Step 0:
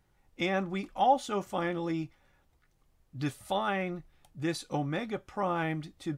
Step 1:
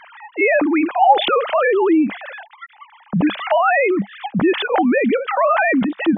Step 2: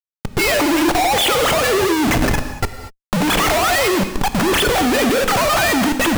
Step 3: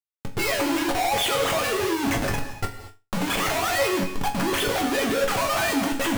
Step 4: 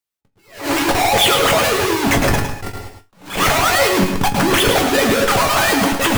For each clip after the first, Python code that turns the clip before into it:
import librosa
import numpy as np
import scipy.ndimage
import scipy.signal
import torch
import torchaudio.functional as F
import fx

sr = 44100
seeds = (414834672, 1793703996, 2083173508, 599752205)

y1 = fx.sine_speech(x, sr)
y1 = fx.peak_eq(y1, sr, hz=200.0, db=7.5, octaves=0.39)
y1 = fx.env_flatten(y1, sr, amount_pct=70)
y1 = y1 * 10.0 ** (5.0 / 20.0)
y2 = fx.high_shelf(y1, sr, hz=2600.0, db=10.5)
y2 = fx.schmitt(y2, sr, flips_db=-25.5)
y2 = fx.rev_gated(y2, sr, seeds[0], gate_ms=260, shape='flat', drr_db=8.0)
y3 = fx.resonator_bank(y2, sr, root=42, chord='minor', decay_s=0.25)
y3 = y3 * 10.0 ** (3.5 / 20.0)
y4 = fx.hpss(y3, sr, part='percussive', gain_db=9)
y4 = y4 + 10.0 ** (-7.0 / 20.0) * np.pad(y4, (int(108 * sr / 1000.0), 0))[:len(y4)]
y4 = fx.attack_slew(y4, sr, db_per_s=140.0)
y4 = y4 * 10.0 ** (3.5 / 20.0)